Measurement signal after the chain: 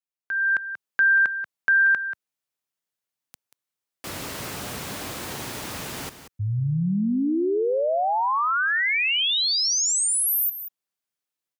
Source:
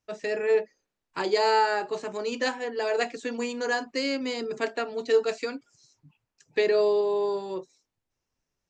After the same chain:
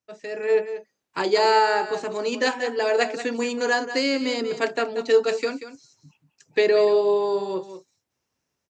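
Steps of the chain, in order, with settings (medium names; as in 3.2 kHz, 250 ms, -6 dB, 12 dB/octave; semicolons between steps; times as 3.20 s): high-pass 97 Hz 12 dB/octave; level rider gain up to 11 dB; delay 185 ms -11.5 dB; trim -5.5 dB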